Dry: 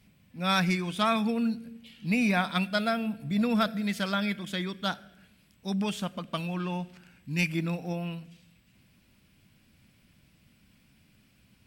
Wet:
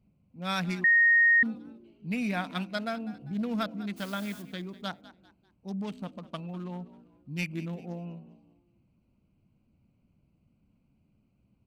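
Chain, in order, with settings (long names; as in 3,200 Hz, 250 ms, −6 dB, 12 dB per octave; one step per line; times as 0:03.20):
adaptive Wiener filter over 25 samples
0:03.96–0:04.41: background noise white −46 dBFS
0:06.77–0:07.38: parametric band 1,800 Hz −7.5 dB 1.2 octaves
echo with shifted repeats 198 ms, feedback 36%, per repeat +59 Hz, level −17.5 dB
0:00.84–0:01.43: beep over 1,860 Hz −12.5 dBFS
level −5 dB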